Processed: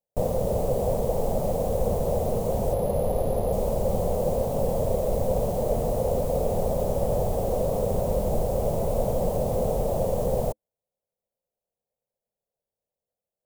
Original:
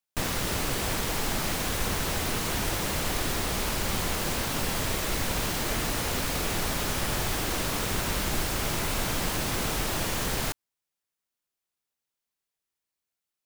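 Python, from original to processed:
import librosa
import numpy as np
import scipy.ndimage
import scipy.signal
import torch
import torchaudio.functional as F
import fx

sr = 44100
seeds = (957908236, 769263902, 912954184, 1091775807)

y = fx.curve_eq(x, sr, hz=(220.0, 310.0, 520.0, 740.0, 1500.0, 5000.0, 7400.0, 13000.0), db=(0, -11, 12, 2, -27, -22, -16, -12))
y = fx.resample_bad(y, sr, factor=4, down='filtered', up='hold', at=(2.73, 3.53))
y = y * 10.0 ** (4.5 / 20.0)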